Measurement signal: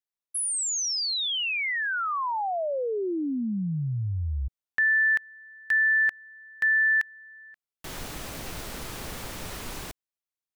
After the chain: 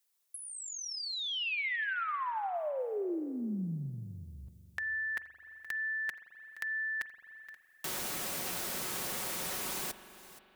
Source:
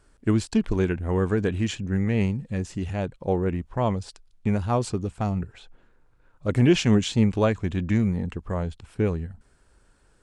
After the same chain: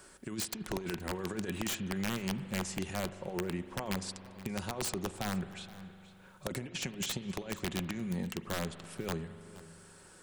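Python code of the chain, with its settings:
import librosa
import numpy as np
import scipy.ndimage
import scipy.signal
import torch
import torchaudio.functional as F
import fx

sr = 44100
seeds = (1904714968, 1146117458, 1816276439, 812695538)

y = fx.highpass(x, sr, hz=260.0, slope=6)
y = fx.high_shelf(y, sr, hz=5500.0, db=10.0)
y = y + 0.37 * np.pad(y, (int(5.4 * sr / 1000.0), 0))[:len(y)]
y = fx.over_compress(y, sr, threshold_db=-28.0, ratio=-0.5)
y = (np.mod(10.0 ** (19.0 / 20.0) * y + 1.0, 2.0) - 1.0) / 10.0 ** (19.0 / 20.0)
y = y + 10.0 ** (-22.5 / 20.0) * np.pad(y, (int(473 * sr / 1000.0), 0))[:len(y)]
y = fx.rev_spring(y, sr, rt60_s=1.9, pass_ms=(42,), chirp_ms=50, drr_db=13.0)
y = fx.band_squash(y, sr, depth_pct=40)
y = y * 10.0 ** (-7.0 / 20.0)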